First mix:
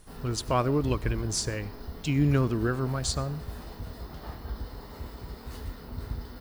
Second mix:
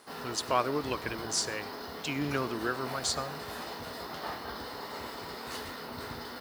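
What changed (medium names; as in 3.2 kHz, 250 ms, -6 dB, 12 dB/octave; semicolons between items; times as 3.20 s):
background +8.5 dB; master: add frequency weighting A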